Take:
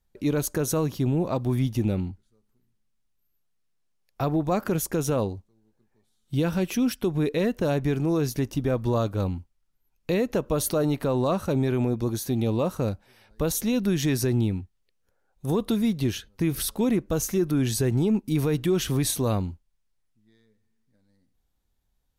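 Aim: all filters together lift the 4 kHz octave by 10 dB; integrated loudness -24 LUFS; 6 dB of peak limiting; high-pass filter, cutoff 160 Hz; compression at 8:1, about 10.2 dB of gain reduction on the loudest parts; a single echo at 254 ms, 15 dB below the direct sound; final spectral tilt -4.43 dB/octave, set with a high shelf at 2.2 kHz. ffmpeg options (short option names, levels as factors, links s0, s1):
-af "highpass=160,highshelf=f=2200:g=4.5,equalizer=f=4000:t=o:g=8,acompressor=threshold=0.0447:ratio=8,alimiter=limit=0.0841:level=0:latency=1,aecho=1:1:254:0.178,volume=2.66"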